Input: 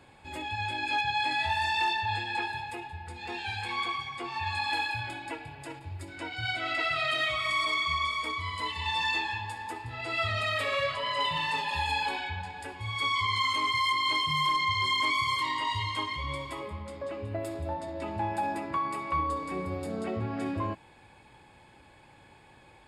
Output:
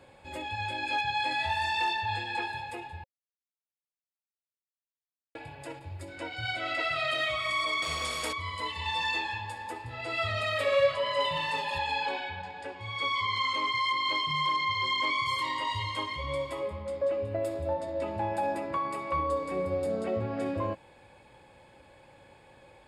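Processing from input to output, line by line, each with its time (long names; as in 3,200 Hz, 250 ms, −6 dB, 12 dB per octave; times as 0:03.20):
0:03.04–0:05.35: silence
0:07.82–0:08.33: every bin compressed towards the loudest bin 2 to 1
0:11.78–0:15.26: band-pass filter 120–5,500 Hz
whole clip: parametric band 540 Hz +11.5 dB 0.3 octaves; level −1.5 dB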